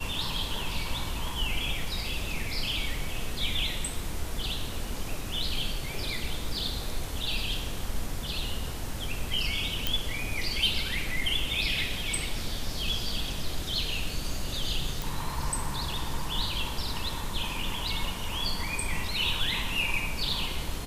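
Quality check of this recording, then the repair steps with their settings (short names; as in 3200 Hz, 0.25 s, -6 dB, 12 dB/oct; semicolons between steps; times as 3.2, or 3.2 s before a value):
9.87 pop
15.02 pop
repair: de-click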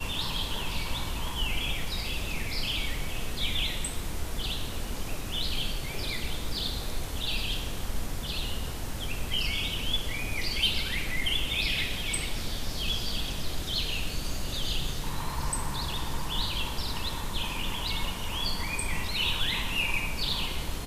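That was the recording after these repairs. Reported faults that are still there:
none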